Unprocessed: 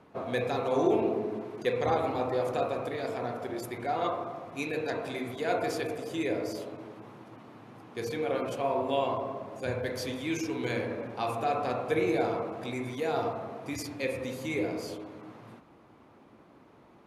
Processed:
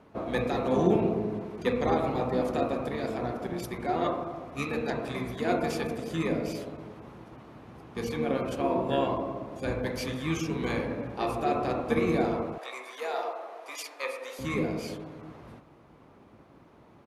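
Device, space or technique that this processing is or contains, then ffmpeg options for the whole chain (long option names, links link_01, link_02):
octave pedal: -filter_complex "[0:a]asplit=2[link_01][link_02];[link_02]asetrate=22050,aresample=44100,atempo=2,volume=-3dB[link_03];[link_01][link_03]amix=inputs=2:normalize=0,asettb=1/sr,asplit=3[link_04][link_05][link_06];[link_04]atrim=end=12.584[link_07];[link_05]atrim=start=12.58:end=14.39,asetpts=PTS-STARTPTS,afade=type=in:duration=0.004:curve=qsin,afade=type=out:start_time=1.806:duration=0.004:curve=qsin,highpass=frequency=520:width=0.5412,highpass=frequency=520:width=1.3066[link_08];[link_06]atrim=start=14.386[link_09];[link_07][link_08]acrossfade=duration=0.004:curve1=hsin:curve2=qsin[link_10];[link_10][link_09]acrossfade=duration=0.004:curve1=qsin:curve2=hsin"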